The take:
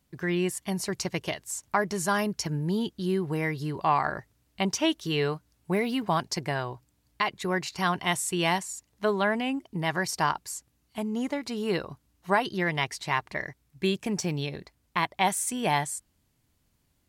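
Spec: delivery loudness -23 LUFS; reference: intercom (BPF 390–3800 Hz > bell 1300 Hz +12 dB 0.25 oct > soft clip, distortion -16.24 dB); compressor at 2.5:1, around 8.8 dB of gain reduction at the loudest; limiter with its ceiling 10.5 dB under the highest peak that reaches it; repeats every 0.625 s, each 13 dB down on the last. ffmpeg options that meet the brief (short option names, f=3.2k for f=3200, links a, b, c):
-af "acompressor=threshold=-33dB:ratio=2.5,alimiter=level_in=2dB:limit=-24dB:level=0:latency=1,volume=-2dB,highpass=390,lowpass=3.8k,equalizer=f=1.3k:t=o:w=0.25:g=12,aecho=1:1:625|1250|1875:0.224|0.0493|0.0108,asoftclip=threshold=-27.5dB,volume=18dB"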